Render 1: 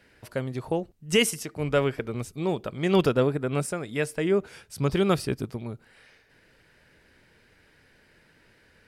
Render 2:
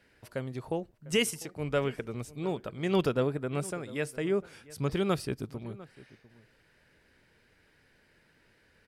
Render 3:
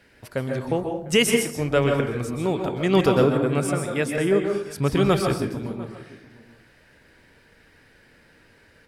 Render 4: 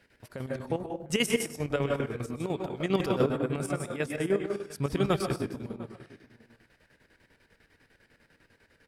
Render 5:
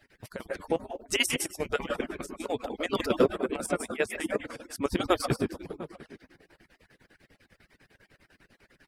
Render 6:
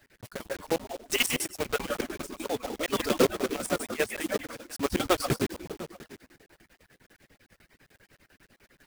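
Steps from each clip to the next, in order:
echo from a far wall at 120 m, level -19 dB; trim -5.5 dB
plate-style reverb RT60 0.59 s, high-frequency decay 0.55×, pre-delay 115 ms, DRR 2.5 dB; trim +8 dB
square tremolo 10 Hz, depth 65%, duty 60%; trim -6 dB
harmonic-percussive separation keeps percussive; trim +4.5 dB
block-companded coder 3-bit

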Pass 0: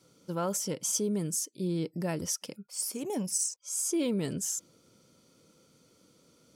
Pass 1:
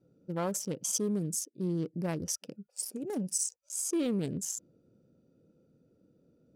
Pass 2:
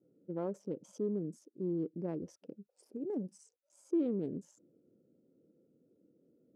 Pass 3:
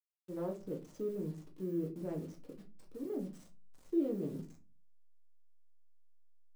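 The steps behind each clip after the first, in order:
local Wiener filter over 41 samples
band-pass filter 350 Hz, Q 1.4
send-on-delta sampling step -54 dBFS; on a send at -1 dB: reverberation RT60 0.30 s, pre-delay 6 ms; on the sum: trim -4.5 dB

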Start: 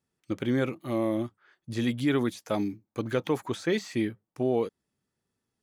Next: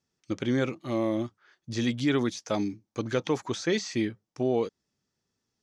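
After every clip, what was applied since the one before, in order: resonant low-pass 5.9 kHz, resonance Q 2.9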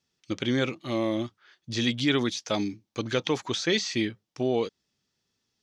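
peaking EQ 3.4 kHz +8.5 dB 1.4 oct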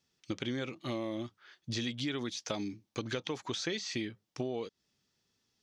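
compression, threshold -33 dBFS, peak gain reduction 13.5 dB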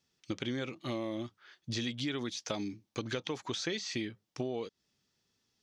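no audible change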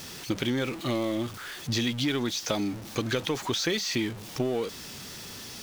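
jump at every zero crossing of -42 dBFS; trim +6.5 dB

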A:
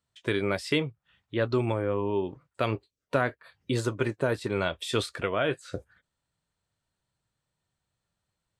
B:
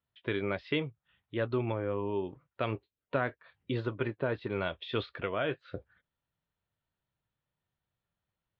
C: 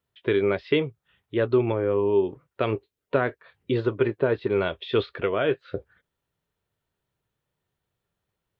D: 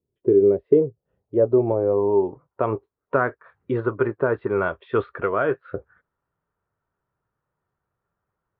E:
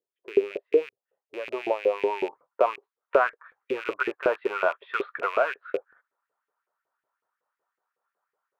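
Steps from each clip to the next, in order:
steep low-pass 3.7 kHz 36 dB/octave; trim -5 dB
peaking EQ 410 Hz +8 dB 0.52 oct; trim +5.5 dB
low-pass sweep 370 Hz -> 1.3 kHz, 0.23–3.23 s
rattle on loud lows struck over -34 dBFS, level -26 dBFS; LFO high-pass saw up 5.4 Hz 410–2400 Hz; gain riding within 3 dB 0.5 s; trim -4 dB

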